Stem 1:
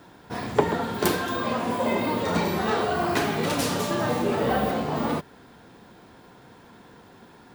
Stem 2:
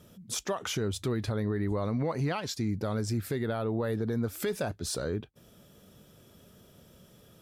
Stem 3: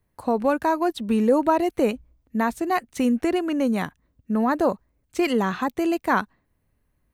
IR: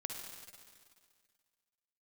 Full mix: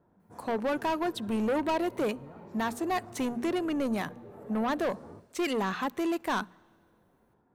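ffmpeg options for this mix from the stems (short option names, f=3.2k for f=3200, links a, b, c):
-filter_complex "[0:a]volume=-18dB[a];[1:a]volume=-15dB,asplit=2[b][c];[c]volume=-18dB[d];[2:a]lowshelf=f=130:g=-11.5,asoftclip=type=tanh:threshold=-23dB,adelay=200,volume=-2dB,asplit=2[e][f];[f]volume=-23dB[g];[a][b]amix=inputs=2:normalize=0,lowpass=1.1k,acompressor=threshold=-44dB:ratio=6,volume=0dB[h];[3:a]atrim=start_sample=2205[i];[d][g]amix=inputs=2:normalize=0[j];[j][i]afir=irnorm=-1:irlink=0[k];[e][h][k]amix=inputs=3:normalize=0,bandreject=f=60:t=h:w=6,bandreject=f=120:t=h:w=6,bandreject=f=180:t=h:w=6,bandreject=f=240:t=h:w=6"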